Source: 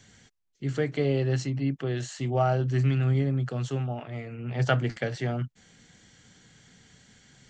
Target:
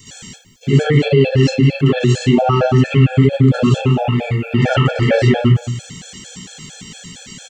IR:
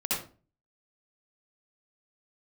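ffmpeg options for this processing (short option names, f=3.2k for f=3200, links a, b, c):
-filter_complex "[0:a]acrossover=split=3200[a][b];[b]acompressor=threshold=-59dB:ratio=4:attack=1:release=60[c];[a][c]amix=inputs=2:normalize=0,aexciter=amount=2.6:drive=4.4:freq=2.7k,asplit=2[d][e];[e]adelay=198.3,volume=-14dB,highshelf=f=4k:g=-4.46[f];[d][f]amix=inputs=2:normalize=0[g];[1:a]atrim=start_sample=2205[h];[g][h]afir=irnorm=-1:irlink=0,alimiter=level_in=14.5dB:limit=-1dB:release=50:level=0:latency=1,afftfilt=real='re*gt(sin(2*PI*4.4*pts/sr)*(1-2*mod(floor(b*sr/1024/450),2)),0)':imag='im*gt(sin(2*PI*4.4*pts/sr)*(1-2*mod(floor(b*sr/1024/450),2)),0)':win_size=1024:overlap=0.75,volume=-1dB"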